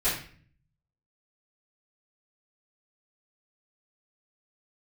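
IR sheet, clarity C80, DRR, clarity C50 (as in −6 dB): 8.5 dB, −14.5 dB, 4.0 dB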